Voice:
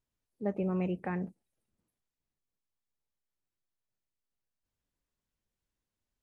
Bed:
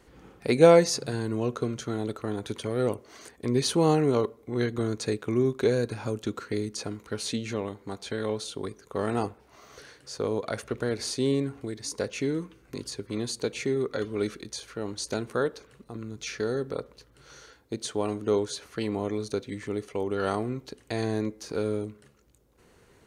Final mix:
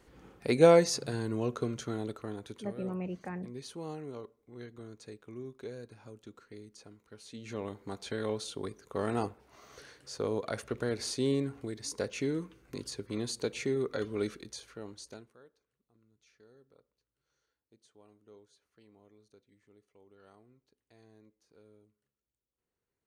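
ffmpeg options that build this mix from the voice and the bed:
-filter_complex "[0:a]adelay=2200,volume=-5dB[a];[1:a]volume=11dB,afade=t=out:st=1.83:d=0.98:silence=0.177828,afade=t=in:st=7.31:d=0.42:silence=0.177828,afade=t=out:st=14.17:d=1.19:silence=0.0421697[b];[a][b]amix=inputs=2:normalize=0"

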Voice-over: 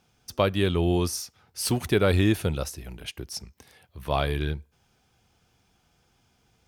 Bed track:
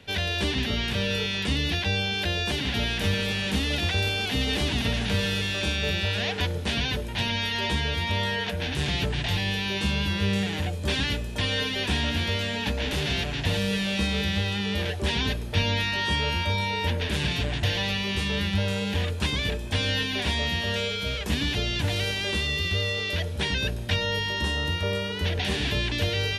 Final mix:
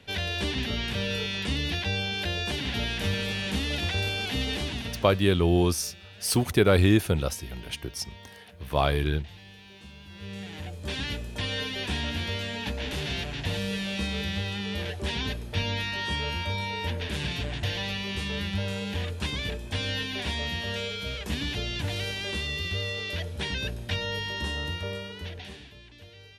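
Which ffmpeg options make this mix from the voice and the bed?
-filter_complex "[0:a]adelay=4650,volume=1.5dB[a];[1:a]volume=14dB,afade=t=out:st=4.41:d=0.83:silence=0.11885,afade=t=in:st=10.06:d=1.17:silence=0.141254,afade=t=out:st=24.61:d=1.09:silence=0.112202[b];[a][b]amix=inputs=2:normalize=0"

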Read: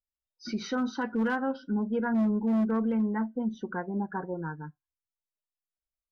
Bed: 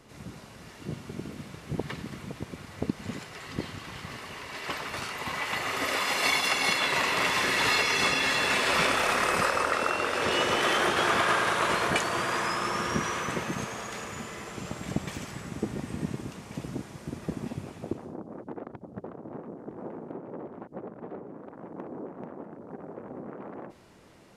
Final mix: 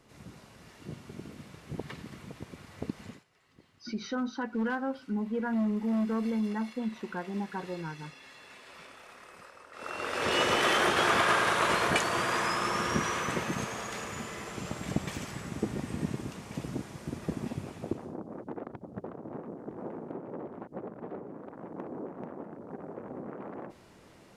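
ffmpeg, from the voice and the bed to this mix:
-filter_complex "[0:a]adelay=3400,volume=-3dB[a];[1:a]volume=19.5dB,afade=t=out:st=3.01:d=0.22:silence=0.1,afade=t=in:st=9.72:d=0.68:silence=0.0530884[b];[a][b]amix=inputs=2:normalize=0"

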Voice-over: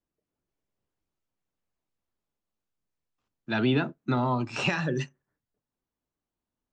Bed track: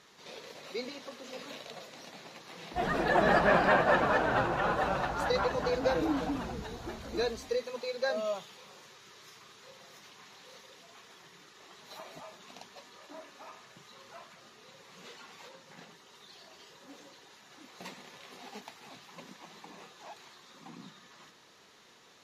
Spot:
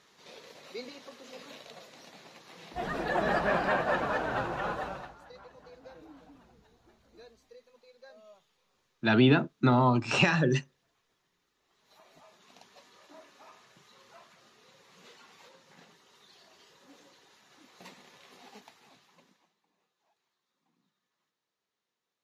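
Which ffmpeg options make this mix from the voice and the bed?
-filter_complex "[0:a]adelay=5550,volume=3dB[a];[1:a]volume=13.5dB,afade=t=out:st=4.68:d=0.51:silence=0.11885,afade=t=in:st=11.64:d=1.17:silence=0.141254,afade=t=out:st=18.47:d=1.08:silence=0.0668344[b];[a][b]amix=inputs=2:normalize=0"

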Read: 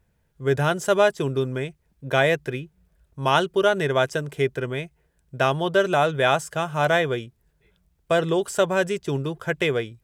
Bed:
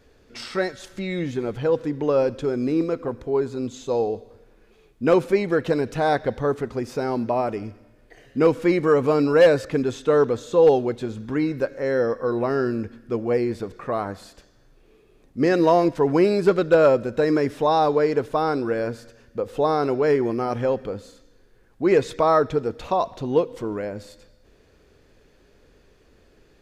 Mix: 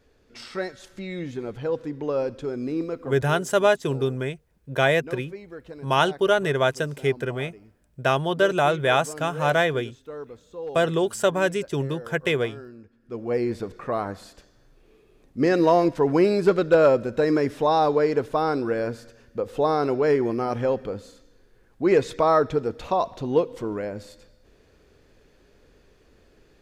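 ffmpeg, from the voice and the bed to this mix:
-filter_complex "[0:a]adelay=2650,volume=-0.5dB[a];[1:a]volume=12.5dB,afade=t=out:st=3.03:d=0.4:silence=0.211349,afade=t=in:st=12.97:d=0.5:silence=0.125893[b];[a][b]amix=inputs=2:normalize=0"

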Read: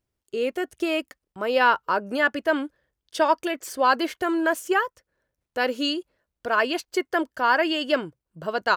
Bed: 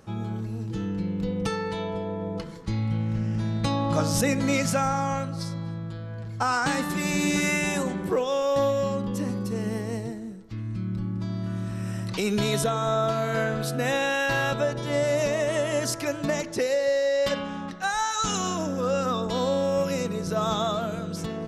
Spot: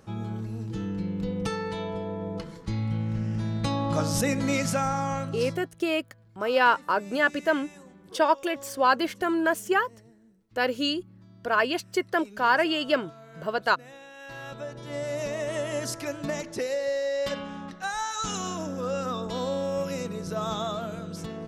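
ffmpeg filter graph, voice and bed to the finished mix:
-filter_complex "[0:a]adelay=5000,volume=-1.5dB[a];[1:a]volume=15.5dB,afade=t=out:st=5.48:d=0.21:silence=0.1,afade=t=in:st=14.13:d=1.48:silence=0.133352[b];[a][b]amix=inputs=2:normalize=0"

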